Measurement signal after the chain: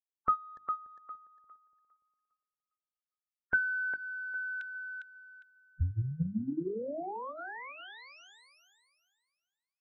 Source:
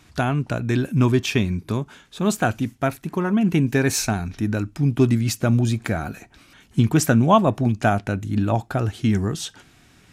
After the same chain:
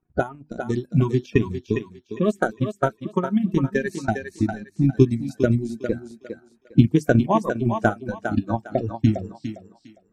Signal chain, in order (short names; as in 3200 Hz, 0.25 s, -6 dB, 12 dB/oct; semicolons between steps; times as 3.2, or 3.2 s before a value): bin magnitudes rounded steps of 30 dB; low-pass opened by the level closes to 1000 Hz, open at -17 dBFS; tilt shelf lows +4.5 dB, about 790 Hz; notches 50/100/150/200/250/300/350 Hz; transient shaper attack +11 dB, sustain -8 dB; spectral noise reduction 16 dB; on a send: thinning echo 0.405 s, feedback 27%, high-pass 370 Hz, level -6 dB; on the sum: gain -7.5 dB